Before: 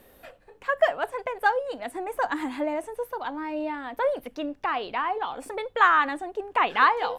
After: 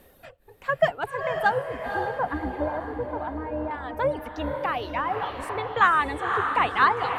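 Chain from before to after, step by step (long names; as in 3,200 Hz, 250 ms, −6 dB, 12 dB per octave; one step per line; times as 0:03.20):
sub-octave generator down 2 octaves, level −1 dB
reverb reduction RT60 1.1 s
0:01.66–0:03.71: low-pass filter 1,400 Hz 12 dB per octave
feedback delay with all-pass diffusion 517 ms, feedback 46%, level −5.5 dB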